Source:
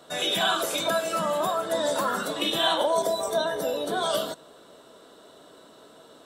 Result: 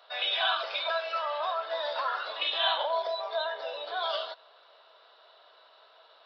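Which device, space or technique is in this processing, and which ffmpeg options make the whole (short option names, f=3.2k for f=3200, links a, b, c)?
musical greeting card: -filter_complex "[0:a]asettb=1/sr,asplit=3[a][b][c];[a]atrim=end=0.864[d];[b]atrim=start=0.86:end=1.52,asetpts=PTS-STARTPTS,afade=t=in:d=0.004:c=qsin,afade=t=out:st=0.656:d=0.004:c=qsin,highpass=280[e];[c]atrim=start=1.516[f];[d][e]acrossfade=d=0.004:c1=hsin:c2=qsin[g];[g][f]acrossfade=d=0.004:c1=qsin:c2=hsin,aresample=11025,aresample=44100,highpass=f=660:w=0.5412,highpass=f=660:w=1.3066,equalizer=f=2.5k:t=o:w=0.27:g=4.5,volume=-3dB"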